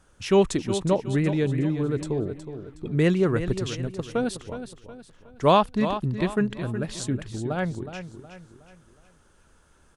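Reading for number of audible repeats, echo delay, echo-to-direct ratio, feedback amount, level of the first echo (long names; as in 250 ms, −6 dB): 4, 367 ms, −9.5 dB, 40%, −10.5 dB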